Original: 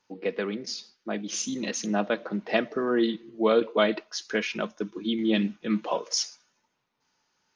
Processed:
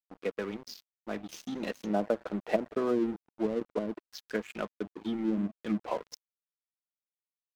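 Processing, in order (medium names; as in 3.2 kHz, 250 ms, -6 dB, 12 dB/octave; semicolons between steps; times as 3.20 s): low-pass that closes with the level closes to 330 Hz, closed at -19.5 dBFS; 1.35–3.39 s: peaking EQ 630 Hz +5 dB 1.4 oct; crossover distortion -38.5 dBFS; trim -3 dB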